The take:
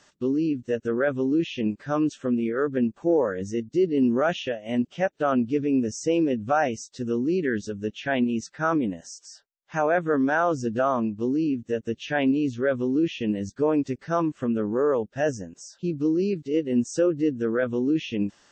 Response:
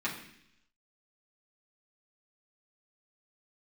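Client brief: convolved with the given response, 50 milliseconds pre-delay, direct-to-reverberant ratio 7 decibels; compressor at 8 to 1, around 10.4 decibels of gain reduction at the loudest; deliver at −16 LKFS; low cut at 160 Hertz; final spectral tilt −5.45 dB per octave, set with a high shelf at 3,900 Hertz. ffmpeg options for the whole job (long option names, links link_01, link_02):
-filter_complex "[0:a]highpass=160,highshelf=frequency=3900:gain=-7.5,acompressor=threshold=-29dB:ratio=8,asplit=2[link_01][link_02];[1:a]atrim=start_sample=2205,adelay=50[link_03];[link_02][link_03]afir=irnorm=-1:irlink=0,volume=-13.5dB[link_04];[link_01][link_04]amix=inputs=2:normalize=0,volume=17dB"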